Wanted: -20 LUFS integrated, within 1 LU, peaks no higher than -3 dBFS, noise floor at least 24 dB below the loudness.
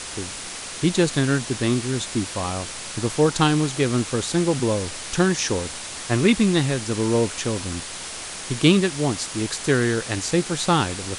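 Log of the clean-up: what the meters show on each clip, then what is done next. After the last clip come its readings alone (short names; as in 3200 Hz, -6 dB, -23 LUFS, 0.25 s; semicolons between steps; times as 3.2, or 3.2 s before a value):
noise floor -34 dBFS; noise floor target -47 dBFS; loudness -22.5 LUFS; peak -3.0 dBFS; loudness target -20.0 LUFS
-> denoiser 13 dB, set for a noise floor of -34 dBFS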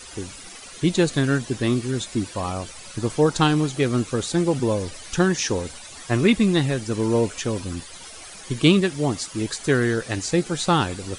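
noise floor -41 dBFS; noise floor target -47 dBFS
-> denoiser 6 dB, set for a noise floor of -41 dBFS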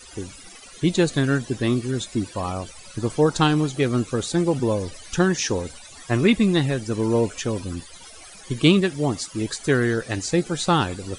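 noise floor -44 dBFS; noise floor target -47 dBFS
-> denoiser 6 dB, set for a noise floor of -44 dBFS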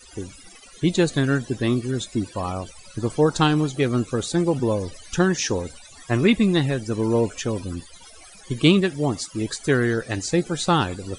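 noise floor -47 dBFS; loudness -22.5 LUFS; peak -3.5 dBFS; loudness target -20.0 LUFS
-> gain +2.5 dB; limiter -3 dBFS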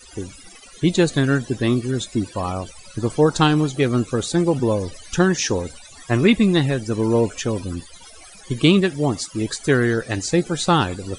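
loudness -20.0 LUFS; peak -3.0 dBFS; noise floor -44 dBFS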